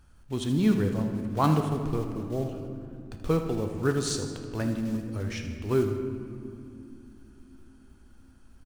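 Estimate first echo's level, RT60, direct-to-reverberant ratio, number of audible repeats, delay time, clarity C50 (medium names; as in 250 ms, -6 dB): -12.0 dB, 2.8 s, 4.5 dB, 2, 79 ms, 5.5 dB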